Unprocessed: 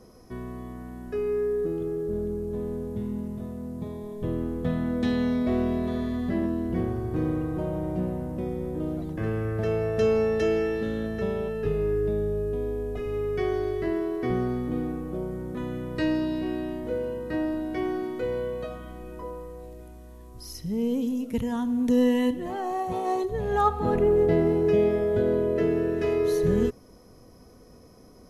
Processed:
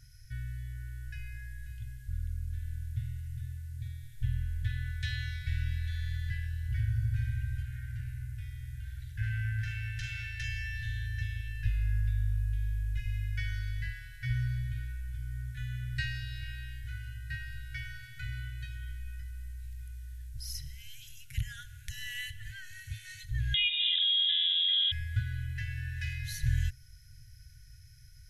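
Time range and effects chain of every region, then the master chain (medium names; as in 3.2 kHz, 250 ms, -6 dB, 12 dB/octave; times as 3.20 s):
7.62–10.44 s: flutter echo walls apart 7.2 m, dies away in 0.38 s + valve stage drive 22 dB, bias 0.4
23.54–24.92 s: compression 5:1, threshold -25 dBFS + frequency inversion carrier 3.7 kHz
whole clip: FFT band-reject 140–1400 Hz; bass shelf 130 Hz +5 dB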